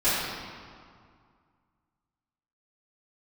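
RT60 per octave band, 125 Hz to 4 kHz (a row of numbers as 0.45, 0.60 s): 2.5, 2.3, 2.0, 2.2, 1.7, 1.4 s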